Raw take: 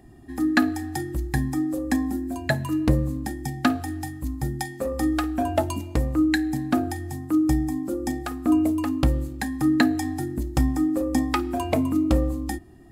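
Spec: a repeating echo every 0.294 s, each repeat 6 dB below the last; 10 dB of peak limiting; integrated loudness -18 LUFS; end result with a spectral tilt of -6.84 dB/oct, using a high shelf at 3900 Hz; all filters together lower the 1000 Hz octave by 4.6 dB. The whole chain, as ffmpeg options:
-af "equalizer=f=1k:t=o:g=-6.5,highshelf=f=3.9k:g=-7,alimiter=limit=-16dB:level=0:latency=1,aecho=1:1:294|588|882|1176|1470|1764:0.501|0.251|0.125|0.0626|0.0313|0.0157,volume=7.5dB"

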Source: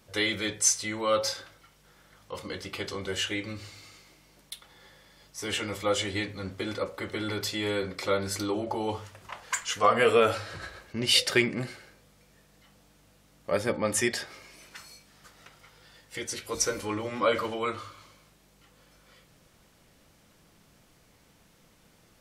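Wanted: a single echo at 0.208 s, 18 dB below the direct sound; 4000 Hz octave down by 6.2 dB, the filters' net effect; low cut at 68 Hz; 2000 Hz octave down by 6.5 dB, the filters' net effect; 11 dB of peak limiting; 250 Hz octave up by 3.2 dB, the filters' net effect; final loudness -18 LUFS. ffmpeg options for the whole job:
-af "highpass=68,equalizer=f=250:t=o:g=4.5,equalizer=f=2k:t=o:g=-6.5,equalizer=f=4k:t=o:g=-6,alimiter=limit=-20dB:level=0:latency=1,aecho=1:1:208:0.126,volume=14.5dB"

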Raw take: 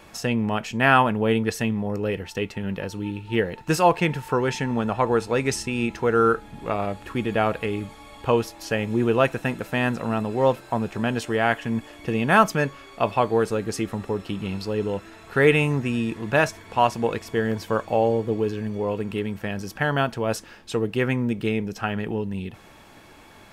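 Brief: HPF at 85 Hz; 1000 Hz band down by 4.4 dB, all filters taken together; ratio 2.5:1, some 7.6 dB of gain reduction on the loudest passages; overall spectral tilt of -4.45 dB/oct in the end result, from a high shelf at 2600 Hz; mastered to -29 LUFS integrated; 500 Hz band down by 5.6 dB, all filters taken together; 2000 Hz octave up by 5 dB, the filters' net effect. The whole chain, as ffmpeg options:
-af "highpass=85,equalizer=f=500:t=o:g=-5.5,equalizer=f=1k:t=o:g=-7.5,equalizer=f=2k:t=o:g=7,highshelf=f=2.6k:g=5,acompressor=threshold=-23dB:ratio=2.5,volume=-1dB"

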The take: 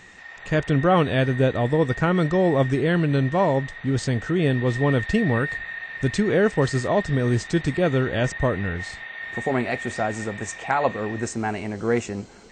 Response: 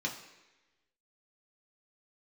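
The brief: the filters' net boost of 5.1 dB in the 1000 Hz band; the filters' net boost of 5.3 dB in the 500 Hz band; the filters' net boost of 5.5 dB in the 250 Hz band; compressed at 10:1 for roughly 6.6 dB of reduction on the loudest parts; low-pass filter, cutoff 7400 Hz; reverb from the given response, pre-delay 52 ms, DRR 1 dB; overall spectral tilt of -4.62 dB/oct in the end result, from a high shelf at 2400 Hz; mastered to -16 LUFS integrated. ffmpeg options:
-filter_complex "[0:a]lowpass=7.4k,equalizer=f=250:t=o:g=6,equalizer=f=500:t=o:g=3.5,equalizer=f=1k:t=o:g=4.5,highshelf=f=2.4k:g=3.5,acompressor=threshold=-16dB:ratio=10,asplit=2[a][b];[1:a]atrim=start_sample=2205,adelay=52[c];[b][c]afir=irnorm=-1:irlink=0,volume=-5dB[d];[a][d]amix=inputs=2:normalize=0,volume=3.5dB"

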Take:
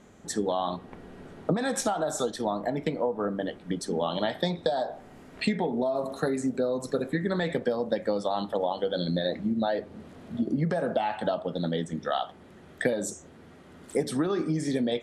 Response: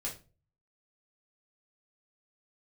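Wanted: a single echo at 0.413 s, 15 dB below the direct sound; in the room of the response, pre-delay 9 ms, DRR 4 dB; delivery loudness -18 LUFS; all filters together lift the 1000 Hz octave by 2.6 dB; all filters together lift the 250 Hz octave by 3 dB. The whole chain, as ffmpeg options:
-filter_complex "[0:a]equalizer=f=250:t=o:g=3.5,equalizer=f=1k:t=o:g=3.5,aecho=1:1:413:0.178,asplit=2[a][b];[1:a]atrim=start_sample=2205,adelay=9[c];[b][c]afir=irnorm=-1:irlink=0,volume=-5dB[d];[a][d]amix=inputs=2:normalize=0,volume=7.5dB"

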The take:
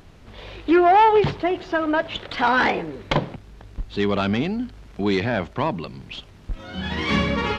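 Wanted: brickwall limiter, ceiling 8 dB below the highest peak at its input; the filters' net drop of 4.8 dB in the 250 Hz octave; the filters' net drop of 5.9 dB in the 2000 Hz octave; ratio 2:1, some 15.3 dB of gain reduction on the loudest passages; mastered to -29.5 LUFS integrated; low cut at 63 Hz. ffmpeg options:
-af "highpass=63,equalizer=f=250:t=o:g=-7,equalizer=f=2k:t=o:g=-8,acompressor=threshold=-43dB:ratio=2,volume=11dB,alimiter=limit=-19dB:level=0:latency=1"

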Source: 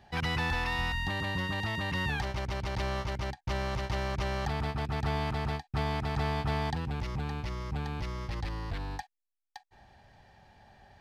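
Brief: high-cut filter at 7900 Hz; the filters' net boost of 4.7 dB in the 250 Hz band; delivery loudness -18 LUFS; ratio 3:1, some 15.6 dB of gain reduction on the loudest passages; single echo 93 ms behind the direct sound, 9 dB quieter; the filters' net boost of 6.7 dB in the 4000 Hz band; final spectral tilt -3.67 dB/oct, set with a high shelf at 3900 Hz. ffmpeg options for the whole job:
-af "lowpass=7.9k,equalizer=f=250:t=o:g=7,highshelf=f=3.9k:g=7.5,equalizer=f=4k:t=o:g=4.5,acompressor=threshold=-47dB:ratio=3,aecho=1:1:93:0.355,volume=27dB"

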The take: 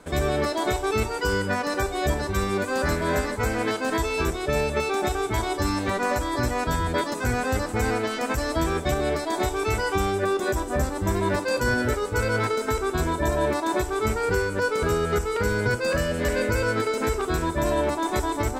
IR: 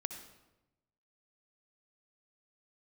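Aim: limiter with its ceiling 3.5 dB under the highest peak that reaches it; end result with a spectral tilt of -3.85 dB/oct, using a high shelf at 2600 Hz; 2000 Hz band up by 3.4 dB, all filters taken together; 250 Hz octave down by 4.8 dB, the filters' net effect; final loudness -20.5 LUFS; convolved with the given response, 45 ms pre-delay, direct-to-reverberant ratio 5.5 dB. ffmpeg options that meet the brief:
-filter_complex "[0:a]equalizer=f=250:t=o:g=-7,equalizer=f=2k:t=o:g=7.5,highshelf=f=2.6k:g=-6,alimiter=limit=-16dB:level=0:latency=1,asplit=2[a][b];[1:a]atrim=start_sample=2205,adelay=45[c];[b][c]afir=irnorm=-1:irlink=0,volume=-5dB[d];[a][d]amix=inputs=2:normalize=0,volume=5dB"

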